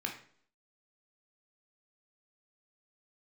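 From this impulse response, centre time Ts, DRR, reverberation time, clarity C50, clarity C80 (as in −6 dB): 20 ms, 1.0 dB, 0.55 s, 7.5 dB, 12.5 dB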